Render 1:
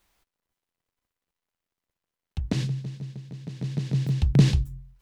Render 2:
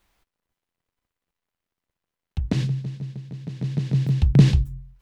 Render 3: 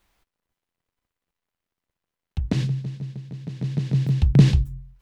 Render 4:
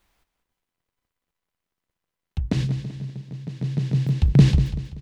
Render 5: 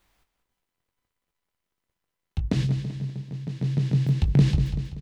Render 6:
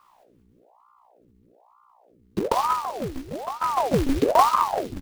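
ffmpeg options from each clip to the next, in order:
-af "bass=f=250:g=2,treble=f=4k:g=-4,volume=2dB"
-af anull
-af "aecho=1:1:192|384|576|768:0.266|0.104|0.0405|0.0158"
-filter_complex "[0:a]acompressor=threshold=-20dB:ratio=2,asplit=2[a][b];[b]adelay=21,volume=-10dB[c];[a][c]amix=inputs=2:normalize=0"
-af "acrusher=bits=3:mode=log:mix=0:aa=0.000001,aeval=exprs='val(0)+0.00126*(sin(2*PI*60*n/s)+sin(2*PI*2*60*n/s)/2+sin(2*PI*3*60*n/s)/3+sin(2*PI*4*60*n/s)/4+sin(2*PI*5*60*n/s)/5)':c=same,aeval=exprs='val(0)*sin(2*PI*630*n/s+630*0.8/1.1*sin(2*PI*1.1*n/s))':c=same,volume=3.5dB"

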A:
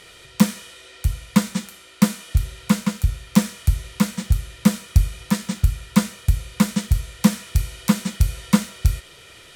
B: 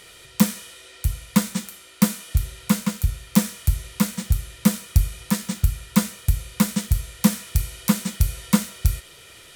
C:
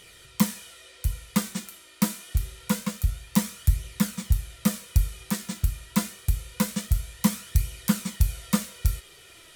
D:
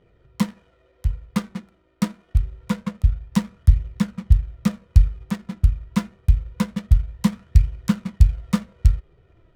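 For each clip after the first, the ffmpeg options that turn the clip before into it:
-af "highshelf=f=10k:g=11.5,volume=-2dB"
-af "flanger=delay=0.3:depth=3:regen=59:speed=0.26:shape=triangular"
-af "asubboost=boost=2:cutoff=200,adynamicsmooth=sensitivity=6.5:basefreq=530,volume=1dB"

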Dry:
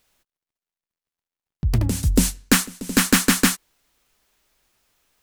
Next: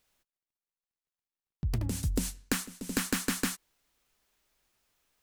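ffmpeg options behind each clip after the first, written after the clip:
-af "acompressor=threshold=-18dB:ratio=6,volume=-8dB"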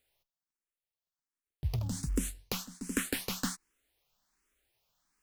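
-filter_complex "[0:a]acrusher=bits=7:mode=log:mix=0:aa=0.000001,asplit=2[a][b];[b]afreqshift=1.3[c];[a][c]amix=inputs=2:normalize=1"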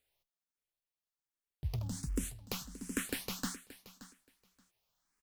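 -af "aecho=1:1:576|1152:0.158|0.0254,volume=-4dB"

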